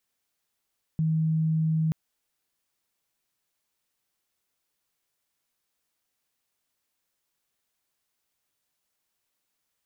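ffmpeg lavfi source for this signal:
ffmpeg -f lavfi -i "aevalsrc='0.0841*sin(2*PI*159*t)':duration=0.93:sample_rate=44100" out.wav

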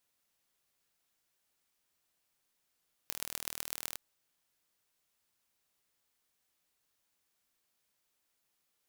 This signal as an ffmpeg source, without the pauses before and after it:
ffmpeg -f lavfi -i "aevalsrc='0.447*eq(mod(n,1111),0)*(0.5+0.5*eq(mod(n,5555),0))':duration=0.86:sample_rate=44100" out.wav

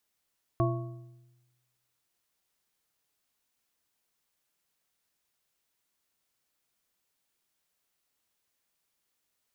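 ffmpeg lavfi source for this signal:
ffmpeg -f lavfi -i "aevalsrc='0.0631*pow(10,-3*t/1.16)*sin(2*PI*124*t)+0.0501*pow(10,-3*t/0.856)*sin(2*PI*341.9*t)+0.0398*pow(10,-3*t/0.699)*sin(2*PI*670.1*t)+0.0316*pow(10,-3*t/0.601)*sin(2*PI*1107.7*t)':duration=1.55:sample_rate=44100" out.wav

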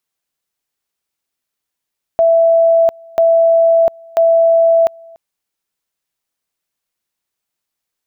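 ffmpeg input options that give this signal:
ffmpeg -f lavfi -i "aevalsrc='pow(10,(-7-28*gte(mod(t,0.99),0.7))/20)*sin(2*PI*663*t)':duration=2.97:sample_rate=44100" out.wav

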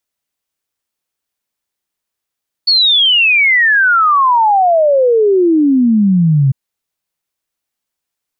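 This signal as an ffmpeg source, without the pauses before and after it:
ffmpeg -f lavfi -i "aevalsrc='0.447*clip(min(t,3.85-t)/0.01,0,1)*sin(2*PI*4500*3.85/log(130/4500)*(exp(log(130/4500)*t/3.85)-1))':duration=3.85:sample_rate=44100" out.wav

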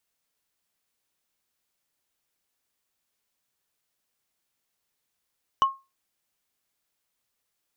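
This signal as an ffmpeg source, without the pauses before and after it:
ffmpeg -f lavfi -i "aevalsrc='0.224*pow(10,-3*t/0.25)*sin(2*PI*1080*t)+0.0562*pow(10,-3*t/0.074)*sin(2*PI*2977.6*t)+0.0141*pow(10,-3*t/0.033)*sin(2*PI*5836.3*t)+0.00355*pow(10,-3*t/0.018)*sin(2*PI*9647.6*t)+0.000891*pow(10,-3*t/0.011)*sin(2*PI*14407.2*t)':duration=0.45:sample_rate=44100" out.wav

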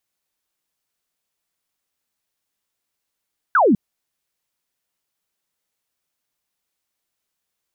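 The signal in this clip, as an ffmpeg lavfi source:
ffmpeg -f lavfi -i "aevalsrc='0.282*clip(t/0.002,0,1)*clip((0.2-t)/0.002,0,1)*sin(2*PI*1600*0.2/log(180/1600)*(exp(log(180/1600)*t/0.2)-1))':duration=0.2:sample_rate=44100" out.wav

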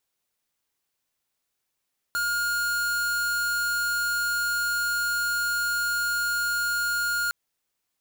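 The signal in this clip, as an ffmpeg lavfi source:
ffmpeg -f lavfi -i "aevalsrc='0.0501*(2*lt(mod(1420*t,1),0.5)-1)':duration=5.16:sample_rate=44100" out.wav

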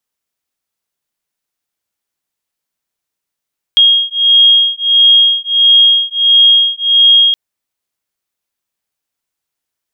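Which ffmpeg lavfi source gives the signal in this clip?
ffmpeg -f lavfi -i "aevalsrc='0.355*(sin(2*PI*3260*t)+sin(2*PI*3261.5*t))':duration=3.57:sample_rate=44100" out.wav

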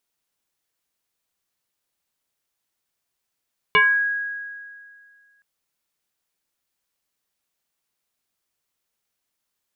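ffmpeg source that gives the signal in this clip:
ffmpeg -f lavfi -i "aevalsrc='0.282*pow(10,-3*t/2.08)*sin(2*PI*1650*t+2.1*pow(10,-3*t/0.39)*sin(2*PI*0.37*1650*t))':duration=1.67:sample_rate=44100" out.wav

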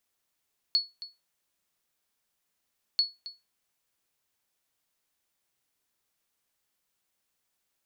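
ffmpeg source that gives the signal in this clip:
ffmpeg -f lavfi -i "aevalsrc='0.15*(sin(2*PI*4390*mod(t,2.24))*exp(-6.91*mod(t,2.24)/0.22)+0.158*sin(2*PI*4390*max(mod(t,2.24)-0.27,0))*exp(-6.91*max(mod(t,2.24)-0.27,0)/0.22))':duration=4.48:sample_rate=44100" out.wav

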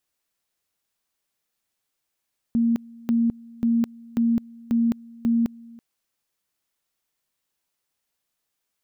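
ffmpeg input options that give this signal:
ffmpeg -f lavfi -i "aevalsrc='pow(10,(-17-24*gte(mod(t,0.54),0.21))/20)*sin(2*PI*232*t)':duration=3.24:sample_rate=44100" out.wav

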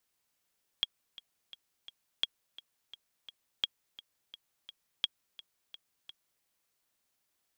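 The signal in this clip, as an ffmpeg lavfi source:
ffmpeg -f lavfi -i "aevalsrc='pow(10,(-15-19*gte(mod(t,4*60/171),60/171))/20)*sin(2*PI*3290*mod(t,60/171))*exp(-6.91*mod(t,60/171)/0.03)':duration=5.61:sample_rate=44100" out.wav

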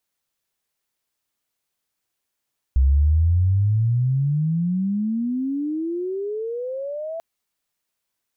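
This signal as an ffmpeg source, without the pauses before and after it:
ffmpeg -f lavfi -i "aevalsrc='pow(10,(-12.5-14.5*t/4.44)/20)*sin(2*PI*64*4.44/log(670/64)*(exp(log(670/64)*t/4.44)-1))':duration=4.44:sample_rate=44100" out.wav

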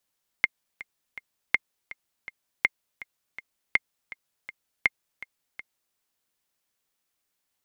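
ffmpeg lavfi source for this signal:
ffmpeg -f lavfi -i "aevalsrc='pow(10,(-6-18.5*gte(mod(t,3*60/163),60/163))/20)*sin(2*PI*2120*mod(t,60/163))*exp(-6.91*mod(t,60/163)/0.03)':duration=5.52:sample_rate=44100" out.wav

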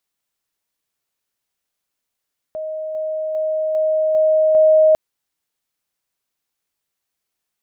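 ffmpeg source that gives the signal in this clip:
ffmpeg -f lavfi -i "aevalsrc='pow(10,(-23.5+3*floor(t/0.4))/20)*sin(2*PI*626*t)':duration=2.4:sample_rate=44100" out.wav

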